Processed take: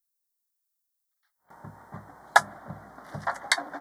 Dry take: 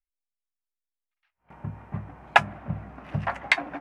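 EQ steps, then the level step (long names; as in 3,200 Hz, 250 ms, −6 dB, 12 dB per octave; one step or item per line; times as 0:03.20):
Butterworth band-reject 2,600 Hz, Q 1.4
RIAA equalisation recording
0.0 dB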